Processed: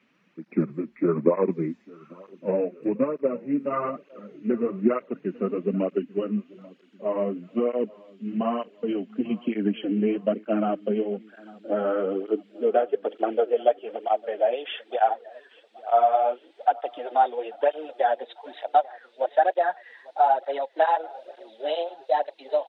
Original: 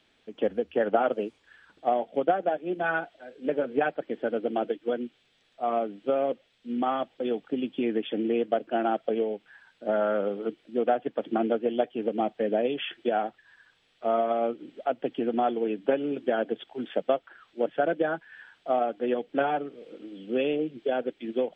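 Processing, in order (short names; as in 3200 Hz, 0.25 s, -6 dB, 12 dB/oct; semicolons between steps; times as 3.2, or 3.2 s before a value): speed glide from 73% -> 117%; high-pass sweep 190 Hz -> 700 Hz, 11.13–14.06; on a send: feedback echo 0.842 s, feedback 46%, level -22 dB; on the sum: tape flanging out of phase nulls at 1.1 Hz, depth 6.8 ms; gain +2 dB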